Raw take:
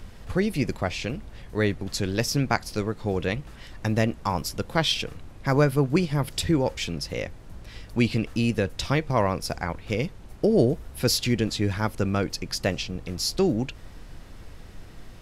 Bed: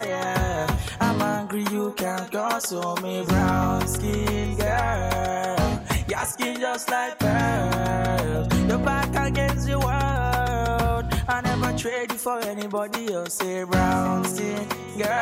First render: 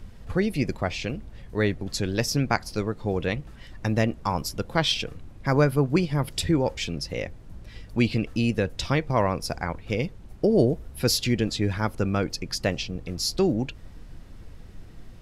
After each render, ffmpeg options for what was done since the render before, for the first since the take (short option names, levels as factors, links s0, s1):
-af "afftdn=nr=6:nf=-45"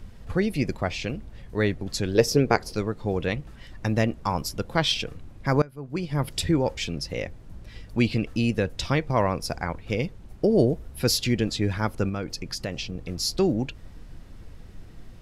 -filter_complex "[0:a]asettb=1/sr,asplit=3[s0][s1][s2];[s0]atrim=end=2.154[s3];[s1]atrim=start=2.15:end=2.73,asetpts=PTS-STARTPTS,afade=t=in:d=0.004:c=qsin,afade=t=out:st=0.576:d=0.004:c=qsin,equalizer=f=430:w=2.3:g=14[s4];[s2]atrim=start=2.726[s5];[s3][s4]acrossfade=d=0.004:c1=hsin:c2=qsin[s6];[s6][s5]acrossfade=d=0.004:c1=qsin:c2=hsin,asettb=1/sr,asplit=3[s7][s8][s9];[s7]atrim=end=12.094[s10];[s8]atrim=start=12.09:end=13.04,asetpts=PTS-STARTPTS,afade=t=in:d=0.004:c=qsin,afade=t=out:st=0.946:d=0.004:c=qsin,acompressor=threshold=0.0447:ratio=3:attack=3.2:release=140:knee=1:detection=peak[s11];[s9]atrim=start=13.036[s12];[s10][s11]acrossfade=d=0.004:c1=hsin:c2=qsin[s13];[s13][s12]acrossfade=d=0.004:c1=qsin:c2=hsin,asplit=2[s14][s15];[s14]atrim=end=5.62,asetpts=PTS-STARTPTS,afade=t=out:st=5.616:d=0.004:c=hsin:silence=0.0707946[s16];[s15]atrim=start=5.62,asetpts=PTS-STARTPTS,afade=t=in:d=0.58:c=qua:silence=0.0707946[s17];[s16][s17]concat=n=2:v=0:a=1"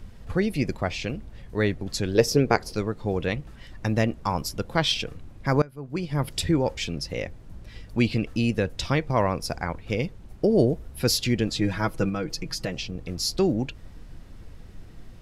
-filter_complex "[0:a]asettb=1/sr,asplit=3[s0][s1][s2];[s0]atrim=end=11.554[s3];[s1]atrim=start=11.55:end=12.73,asetpts=PTS-STARTPTS,afade=t=in:d=0.004:c=qsin,afade=t=out:st=1.176:d=0.004:c=qsin,aecho=1:1:6.2:0.65,atrim=end_sample=52038[s4];[s2]atrim=start=12.726[s5];[s3][s4]acrossfade=d=0.004:c1=hsin:c2=qsin[s6];[s6][s5]acrossfade=d=0.004:c1=qsin:c2=hsin"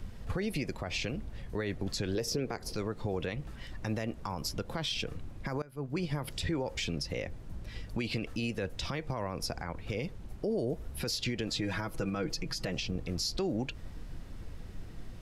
-filter_complex "[0:a]acrossover=split=390|6800[s0][s1][s2];[s0]acompressor=threshold=0.0355:ratio=4[s3];[s1]acompressor=threshold=0.0501:ratio=4[s4];[s2]acompressor=threshold=0.00631:ratio=4[s5];[s3][s4][s5]amix=inputs=3:normalize=0,alimiter=limit=0.0631:level=0:latency=1:release=91"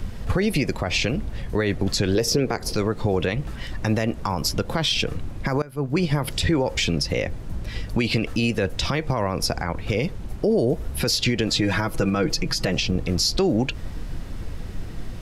-af "volume=3.98"